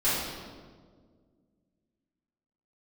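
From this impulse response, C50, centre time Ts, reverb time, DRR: −1.5 dB, 98 ms, 1.7 s, −13.0 dB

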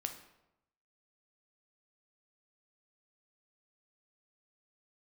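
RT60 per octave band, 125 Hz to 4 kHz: 1.0, 0.90, 0.90, 0.85, 0.70, 0.60 seconds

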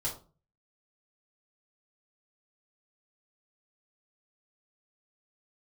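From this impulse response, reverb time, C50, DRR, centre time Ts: 0.35 s, 8.5 dB, −6.5 dB, 23 ms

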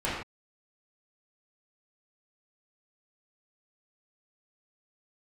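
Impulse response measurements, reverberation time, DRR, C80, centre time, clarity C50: non-exponential decay, −9.5 dB, 4.0 dB, 58 ms, 0.5 dB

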